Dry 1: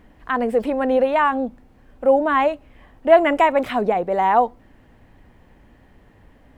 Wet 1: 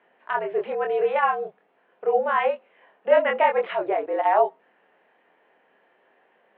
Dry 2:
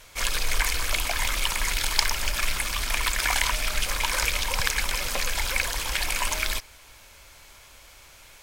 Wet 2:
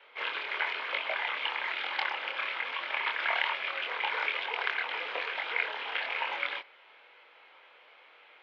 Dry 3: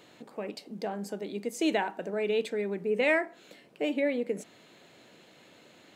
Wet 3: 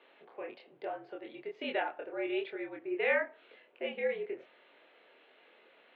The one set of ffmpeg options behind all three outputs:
-af "highpass=f=470:t=q:w=0.5412,highpass=f=470:t=q:w=1.307,lowpass=f=3.3k:t=q:w=0.5176,lowpass=f=3.3k:t=q:w=0.7071,lowpass=f=3.3k:t=q:w=1.932,afreqshift=-63,flanger=delay=22.5:depth=5.1:speed=1.1"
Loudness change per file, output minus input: -4.5, -6.0, -5.5 LU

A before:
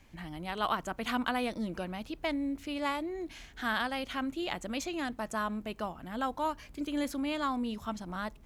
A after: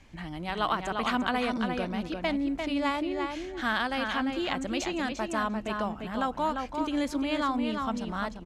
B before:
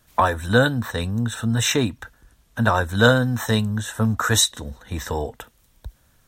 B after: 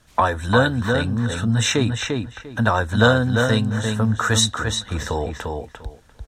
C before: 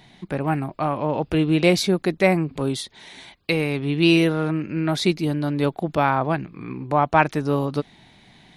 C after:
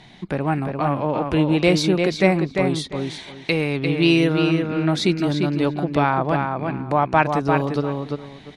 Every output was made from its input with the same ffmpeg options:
-filter_complex "[0:a]lowpass=8.2k,asplit=2[a][b];[b]adelay=347,lowpass=f=4.1k:p=1,volume=-5dB,asplit=2[c][d];[d]adelay=347,lowpass=f=4.1k:p=1,volume=0.16,asplit=2[e][f];[f]adelay=347,lowpass=f=4.1k:p=1,volume=0.16[g];[a][c][e][g]amix=inputs=4:normalize=0,asplit=2[h][i];[i]acompressor=threshold=-28dB:ratio=6,volume=-1dB[j];[h][j]amix=inputs=2:normalize=0,volume=-1.5dB"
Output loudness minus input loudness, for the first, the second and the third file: +4.5, +0.5, +1.0 LU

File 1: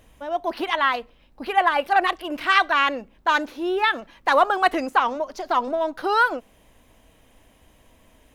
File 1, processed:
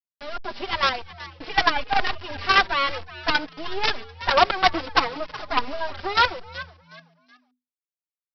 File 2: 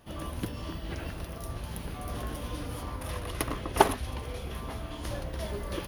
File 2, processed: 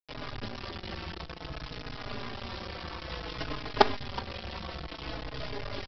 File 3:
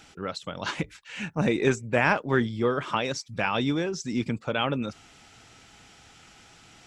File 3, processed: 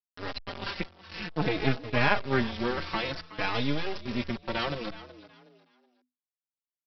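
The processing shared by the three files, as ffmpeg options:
-filter_complex "[0:a]highshelf=f=3.1k:g=4,aresample=11025,acrusher=bits=3:dc=4:mix=0:aa=0.000001,aresample=44100,asplit=4[a][b][c][d];[b]adelay=371,afreqshift=83,volume=-17dB[e];[c]adelay=742,afreqshift=166,volume=-27.5dB[f];[d]adelay=1113,afreqshift=249,volume=-37.9dB[g];[a][e][f][g]amix=inputs=4:normalize=0,asplit=2[h][i];[i]adelay=4.3,afreqshift=-0.56[j];[h][j]amix=inputs=2:normalize=1,volume=2dB"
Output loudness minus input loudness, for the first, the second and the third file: -1.0, -1.5, -3.5 LU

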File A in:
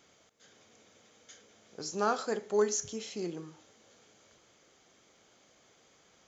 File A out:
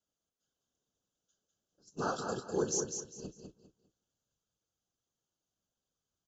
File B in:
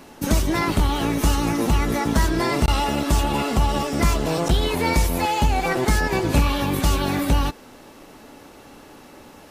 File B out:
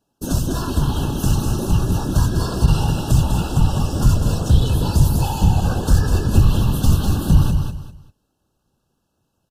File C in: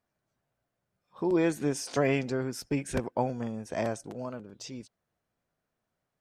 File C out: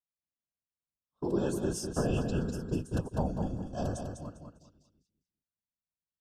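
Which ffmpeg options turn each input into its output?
-af "asubboost=boost=2.5:cutoff=140,agate=range=-24dB:threshold=-35dB:ratio=16:detection=peak,highpass=46,bass=f=250:g=8,treble=f=4k:g=6,afftfilt=real='hypot(re,im)*cos(2*PI*random(0))':imag='hypot(re,im)*sin(2*PI*random(1))':win_size=512:overlap=0.75,asoftclip=type=tanh:threshold=-2dB,asuperstop=centerf=2100:order=20:qfactor=2.4,aecho=1:1:200|400|600:0.501|0.13|0.0339"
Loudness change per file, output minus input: -3.0, +2.5, -2.5 LU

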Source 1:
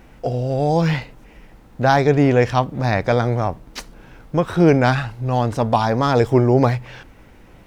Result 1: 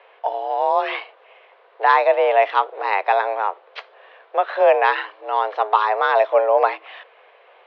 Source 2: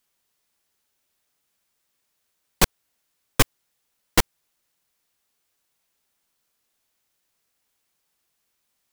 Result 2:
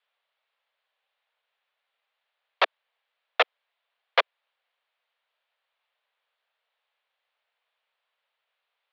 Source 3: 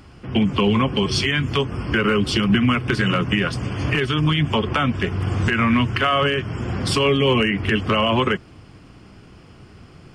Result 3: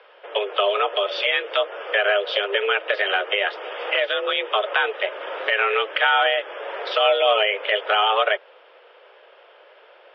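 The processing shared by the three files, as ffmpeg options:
-af "highpass=f=290:t=q:w=0.5412,highpass=f=290:t=q:w=1.307,lowpass=f=3.5k:t=q:w=0.5176,lowpass=f=3.5k:t=q:w=0.7071,lowpass=f=3.5k:t=q:w=1.932,afreqshift=200,volume=1dB"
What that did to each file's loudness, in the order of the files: -1.0, -3.0, -1.5 LU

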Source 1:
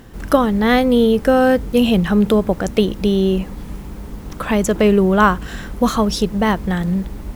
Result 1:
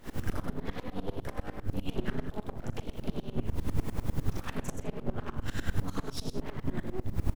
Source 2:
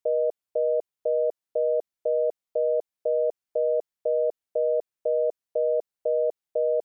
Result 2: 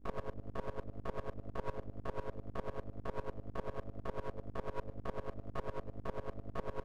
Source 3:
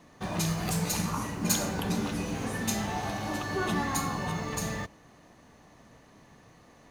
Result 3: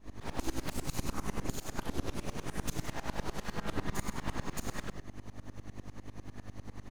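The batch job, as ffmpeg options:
-filter_complex "[0:a]acompressor=threshold=-18dB:ratio=6,alimiter=limit=-15.5dB:level=0:latency=1:release=424,acrossover=split=140[a][b];[b]acompressor=threshold=-39dB:ratio=8[c];[a][c]amix=inputs=2:normalize=0,asplit=2[d][e];[e]adelay=38,volume=-3dB[f];[d][f]amix=inputs=2:normalize=0,flanger=delay=2.9:depth=6.9:regen=75:speed=0.39:shape=sinusoidal,aeval=exprs='val(0)+0.00398*(sin(2*PI*50*n/s)+sin(2*PI*2*50*n/s)/2+sin(2*PI*3*50*n/s)/3+sin(2*PI*4*50*n/s)/4+sin(2*PI*5*50*n/s)/5)':c=same,aecho=1:1:60|61|64|81|126|167:0.211|0.119|0.119|0.178|0.376|0.2,aeval=exprs='abs(val(0))':c=same,aeval=exprs='val(0)*pow(10,-22*if(lt(mod(-10*n/s,1),2*abs(-10)/1000),1-mod(-10*n/s,1)/(2*abs(-10)/1000),(mod(-10*n/s,1)-2*abs(-10)/1000)/(1-2*abs(-10)/1000))/20)':c=same,volume=10.5dB"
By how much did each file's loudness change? -21.0, -18.0, -10.0 LU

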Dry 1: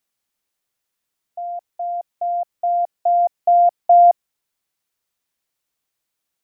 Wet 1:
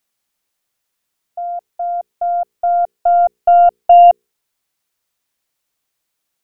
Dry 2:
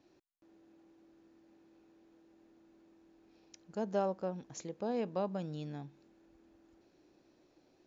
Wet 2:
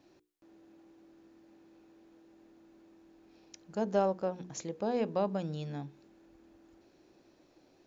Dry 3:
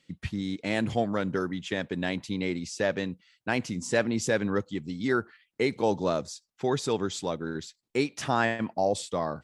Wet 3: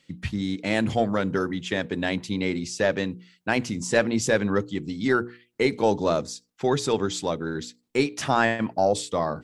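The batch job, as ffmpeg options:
-af "bandreject=f=60:t=h:w=6,bandreject=f=120:t=h:w=6,bandreject=f=180:t=h:w=6,bandreject=f=240:t=h:w=6,bandreject=f=300:t=h:w=6,bandreject=f=360:t=h:w=6,bandreject=f=420:t=h:w=6,bandreject=f=480:t=h:w=6,aeval=exprs='0.501*(cos(1*acos(clip(val(0)/0.501,-1,1)))-cos(1*PI/2))+0.0141*(cos(4*acos(clip(val(0)/0.501,-1,1)))-cos(4*PI/2))':c=same,volume=4.5dB"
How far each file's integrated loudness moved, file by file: +4.5, +4.0, +4.0 LU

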